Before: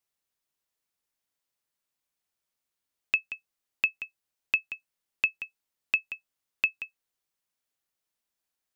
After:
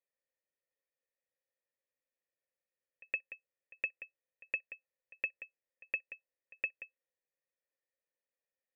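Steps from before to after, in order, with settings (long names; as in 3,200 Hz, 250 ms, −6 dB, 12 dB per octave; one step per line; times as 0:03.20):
formant resonators in series e
echo ahead of the sound 116 ms −22.5 dB
level +7 dB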